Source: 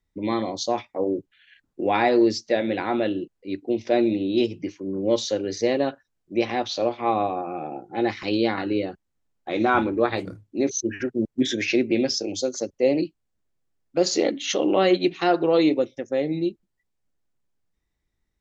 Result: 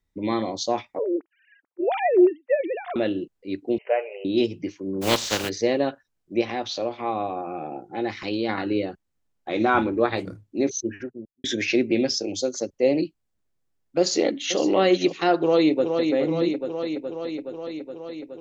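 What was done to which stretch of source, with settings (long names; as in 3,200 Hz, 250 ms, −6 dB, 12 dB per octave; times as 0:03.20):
0:00.99–0:02.96: three sine waves on the formant tracks
0:03.78–0:04.25: linear-phase brick-wall band-pass 390–3,100 Hz
0:05.01–0:05.48: compressing power law on the bin magnitudes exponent 0.34
0:06.41–0:08.49: downward compressor 1.5 to 1, threshold −28 dBFS
0:10.63–0:11.44: fade out and dull
0:13.99–0:14.61: delay throw 510 ms, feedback 20%, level −12.5 dB
0:15.36–0:16.13: delay throw 420 ms, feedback 75%, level −5 dB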